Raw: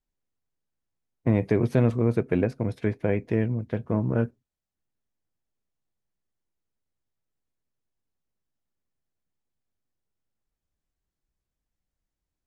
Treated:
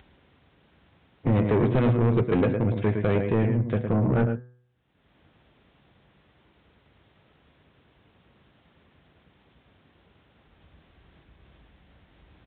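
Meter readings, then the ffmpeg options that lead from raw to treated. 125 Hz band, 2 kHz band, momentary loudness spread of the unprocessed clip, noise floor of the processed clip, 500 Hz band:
+2.5 dB, +2.0 dB, 6 LU, −64 dBFS, +1.5 dB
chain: -filter_complex "[0:a]bandreject=frequency=123.6:width_type=h:width=4,bandreject=frequency=247.2:width_type=h:width=4,bandreject=frequency=370.8:width_type=h:width=4,bandreject=frequency=494.4:width_type=h:width=4,bandreject=frequency=618:width_type=h:width=4,bandreject=frequency=741.6:width_type=h:width=4,bandreject=frequency=865.2:width_type=h:width=4,bandreject=frequency=988.8:width_type=h:width=4,bandreject=frequency=1112.4:width_type=h:width=4,bandreject=frequency=1236:width_type=h:width=4,bandreject=frequency=1359.6:width_type=h:width=4,bandreject=frequency=1483.2:width_type=h:width=4,bandreject=frequency=1606.8:width_type=h:width=4,bandreject=frequency=1730.4:width_type=h:width=4,bandreject=frequency=1854:width_type=h:width=4,bandreject=frequency=1977.6:width_type=h:width=4,bandreject=frequency=2101.2:width_type=h:width=4,bandreject=frequency=2224.8:width_type=h:width=4,acompressor=mode=upward:threshold=-36dB:ratio=2.5,highpass=frequency=52:width=0.5412,highpass=frequency=52:width=1.3066,asplit=2[link_01][link_02];[link_02]adelay=110.8,volume=-9dB,highshelf=frequency=4000:gain=-2.49[link_03];[link_01][link_03]amix=inputs=2:normalize=0,aresample=8000,asoftclip=type=tanh:threshold=-23dB,aresample=44100,volume=6.5dB"

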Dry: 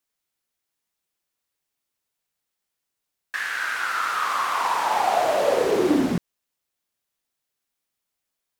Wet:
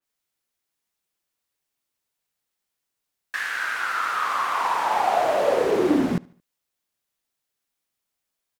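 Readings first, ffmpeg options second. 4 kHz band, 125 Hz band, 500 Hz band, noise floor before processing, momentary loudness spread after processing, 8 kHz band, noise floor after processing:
−2.5 dB, 0.0 dB, 0.0 dB, −82 dBFS, 7 LU, −4.0 dB, −82 dBFS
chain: -filter_complex "[0:a]asplit=2[link_01][link_02];[link_02]adelay=74,lowpass=frequency=4800:poles=1,volume=-24dB,asplit=2[link_03][link_04];[link_04]adelay=74,lowpass=frequency=4800:poles=1,volume=0.45,asplit=2[link_05][link_06];[link_06]adelay=74,lowpass=frequency=4800:poles=1,volume=0.45[link_07];[link_01][link_03][link_05][link_07]amix=inputs=4:normalize=0,adynamicequalizer=threshold=0.0112:dfrequency=3100:dqfactor=0.7:tfrequency=3100:tqfactor=0.7:attack=5:release=100:ratio=0.375:range=2.5:mode=cutabove:tftype=highshelf"

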